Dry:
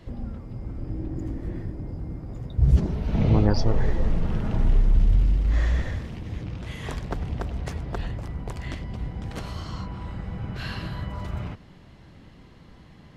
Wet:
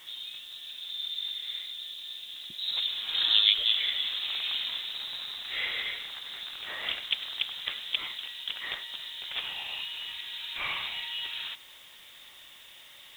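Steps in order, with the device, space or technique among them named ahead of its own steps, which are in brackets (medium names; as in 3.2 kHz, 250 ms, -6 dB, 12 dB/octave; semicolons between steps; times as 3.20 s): scrambled radio voice (band-pass 390–2700 Hz; frequency inversion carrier 3.9 kHz; white noise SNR 25 dB); trim +6 dB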